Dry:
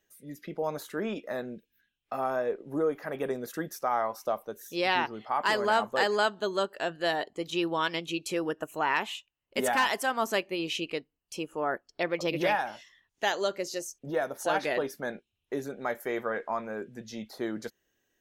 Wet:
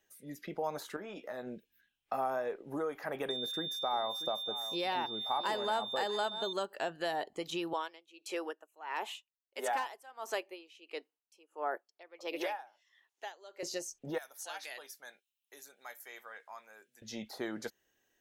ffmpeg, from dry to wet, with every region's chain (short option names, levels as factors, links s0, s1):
-filter_complex "[0:a]asettb=1/sr,asplit=3[s0][s1][s2];[s0]atrim=end=0.964[s3];[s1]atrim=start=0.96:end=1.47,asetpts=PTS-STARTPTS,afade=t=in:d=0.004:c=qsin,afade=t=out:st=0.506:d=0.004:c=qsin,acompressor=threshold=0.0112:ratio=6:attack=3.2:release=140:knee=1:detection=peak,asplit=2[s4][s5];[s5]adelay=16,volume=0.398[s6];[s4][s6]amix=inputs=2:normalize=0,atrim=end_sample=22491[s7];[s2]atrim=start=1.466[s8];[s3][s7]acrossfade=d=0.004:c1=hsin:c2=qsin[s9];[s9][s8]acrossfade=d=0.004:c1=qsin:c2=hsin,asettb=1/sr,asplit=3[s10][s11][s12];[s10]atrim=end=3.294[s13];[s11]atrim=start=3.29:end=6.53,asetpts=PTS-STARTPTS,afade=t=in:d=0.004:c=qsin,afade=t=out:st=3.236:d=0.004:c=qsin,aeval=exprs='val(0)+0.0355*sin(2*PI*3600*n/s)':c=same,aecho=1:1:636:0.133,atrim=end_sample=142884[s14];[s12]atrim=start=6.526[s15];[s13][s14]acrossfade=d=0.004:c1=hsin:c2=qsin[s16];[s16][s15]acrossfade=d=0.004:c1=qsin:c2=hsin,asettb=1/sr,asplit=3[s17][s18][s19];[s17]atrim=end=7.734[s20];[s18]atrim=start=7.73:end=13.63,asetpts=PTS-STARTPTS,afade=t=in:d=0.004:c=qsin,afade=t=out:st=5.896:d=0.004:c=qsin,highpass=f=330:w=0.5412,highpass=f=330:w=1.3066,aeval=exprs='val(0)*pow(10,-26*(0.5-0.5*cos(2*PI*1.5*n/s))/20)':c=same[s21];[s19]atrim=start=13.626[s22];[s20][s21]acrossfade=d=0.004:c1=hsin:c2=qsin[s23];[s23][s22]acrossfade=d=0.004:c1=qsin:c2=hsin,asettb=1/sr,asplit=3[s24][s25][s26];[s24]atrim=end=14.184[s27];[s25]atrim=start=14.18:end=17.02,asetpts=PTS-STARTPTS,afade=t=in:d=0.004:c=qsin,afade=t=out:st=2.836:d=0.004:c=qsin,highpass=49,aderivative[s28];[s26]atrim=start=17.016[s29];[s27][s28]acrossfade=d=0.004:c1=hsin:c2=qsin[s30];[s30][s29]acrossfade=d=0.004:c1=qsin:c2=hsin,lowshelf=f=350:g=-5,acrossover=split=850|8000[s31][s32][s33];[s31]acompressor=threshold=0.0158:ratio=4[s34];[s32]acompressor=threshold=0.01:ratio=4[s35];[s33]acompressor=threshold=0.00178:ratio=4[s36];[s34][s35][s36]amix=inputs=3:normalize=0,equalizer=f=820:t=o:w=0.4:g=4.5"